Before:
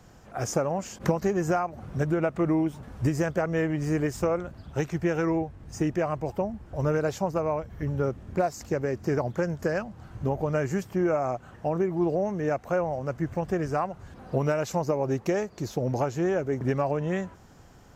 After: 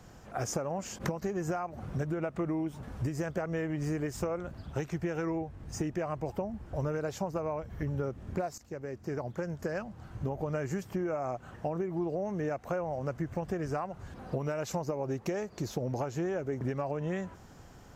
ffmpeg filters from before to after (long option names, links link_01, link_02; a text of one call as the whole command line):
ffmpeg -i in.wav -filter_complex "[0:a]asplit=2[link_01][link_02];[link_01]atrim=end=8.58,asetpts=PTS-STARTPTS,afade=type=out:start_time=8.576:duration=0.004:curve=hsin:silence=0.158489[link_03];[link_02]atrim=start=8.58,asetpts=PTS-STARTPTS,afade=type=in:duration=2.02:silence=0.158489[link_04];[link_03][link_04]concat=n=2:v=0:a=1,acompressor=threshold=-30dB:ratio=6" out.wav